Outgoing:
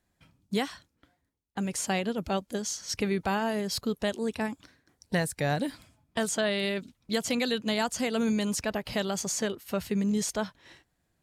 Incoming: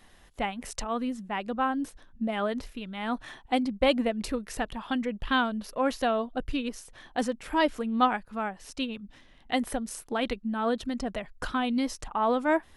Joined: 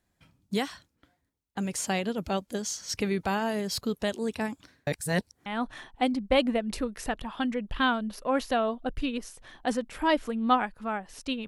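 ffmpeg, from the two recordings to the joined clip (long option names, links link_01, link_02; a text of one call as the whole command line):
ffmpeg -i cue0.wav -i cue1.wav -filter_complex "[0:a]apad=whole_dur=11.47,atrim=end=11.47,asplit=2[link_01][link_02];[link_01]atrim=end=4.872[link_03];[link_02]atrim=start=4.868:end=5.462,asetpts=PTS-STARTPTS,areverse[link_04];[1:a]atrim=start=2.968:end=8.98[link_05];[link_03][link_04]acrossfade=duration=0.004:curve1=hsin:curve2=hsin[link_06];[link_06][link_05]acrossfade=duration=0.004:curve1=hsin:curve2=hsin" out.wav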